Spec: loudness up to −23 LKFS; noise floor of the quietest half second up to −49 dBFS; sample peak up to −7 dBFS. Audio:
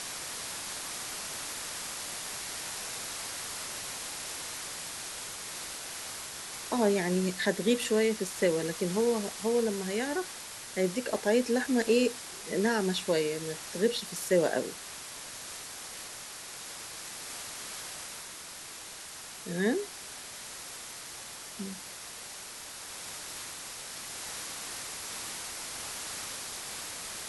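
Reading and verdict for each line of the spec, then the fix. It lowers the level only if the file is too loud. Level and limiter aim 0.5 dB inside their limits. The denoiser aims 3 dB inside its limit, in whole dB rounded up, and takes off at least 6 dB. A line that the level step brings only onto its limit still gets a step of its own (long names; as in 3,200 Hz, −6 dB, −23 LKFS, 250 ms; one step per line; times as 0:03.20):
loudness −33.0 LKFS: in spec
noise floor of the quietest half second −45 dBFS: out of spec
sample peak −13.5 dBFS: in spec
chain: broadband denoise 7 dB, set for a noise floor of −45 dBFS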